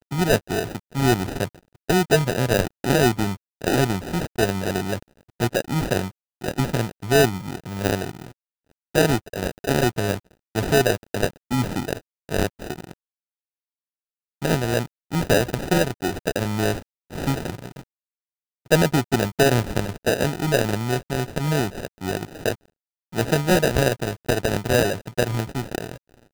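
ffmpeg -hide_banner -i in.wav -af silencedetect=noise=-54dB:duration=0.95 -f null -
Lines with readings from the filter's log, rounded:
silence_start: 12.93
silence_end: 14.42 | silence_duration: 1.48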